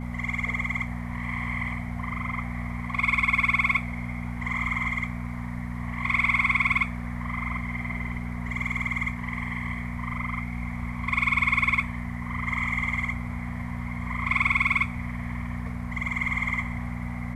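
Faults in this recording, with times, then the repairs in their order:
mains hum 60 Hz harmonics 4 −33 dBFS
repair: hum removal 60 Hz, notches 4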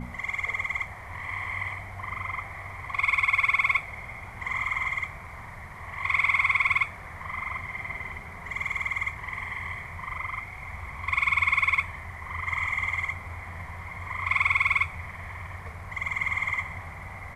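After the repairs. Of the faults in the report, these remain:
none of them is left

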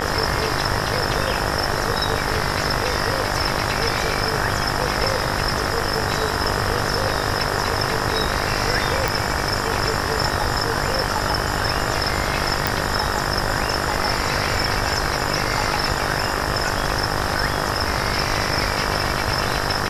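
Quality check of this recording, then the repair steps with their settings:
mains buzz 50 Hz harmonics 38 −26 dBFS
0:09.08: click
0:12.67: click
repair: click removal
hum removal 50 Hz, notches 38

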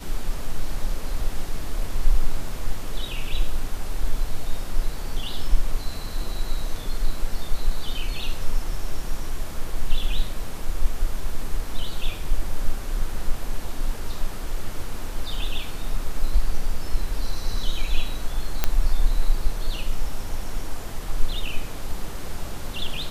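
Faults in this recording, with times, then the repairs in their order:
0:18.64: click −5 dBFS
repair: click removal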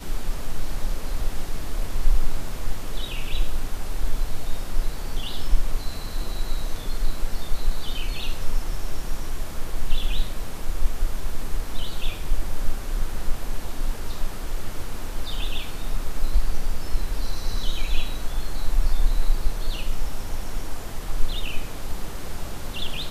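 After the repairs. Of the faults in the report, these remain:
none of them is left

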